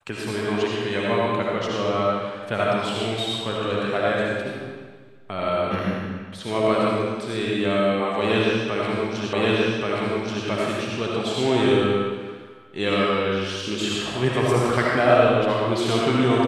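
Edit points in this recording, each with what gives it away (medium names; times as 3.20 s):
9.33 s: repeat of the last 1.13 s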